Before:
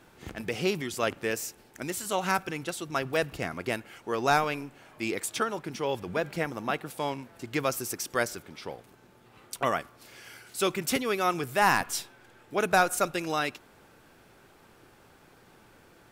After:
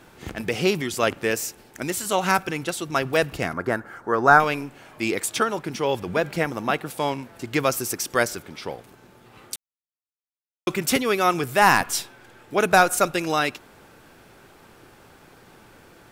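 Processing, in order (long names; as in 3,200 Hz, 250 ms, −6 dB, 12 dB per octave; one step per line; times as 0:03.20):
0:03.53–0:04.40: high shelf with overshoot 2,000 Hz −9 dB, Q 3
0:09.56–0:10.67: silence
level +6.5 dB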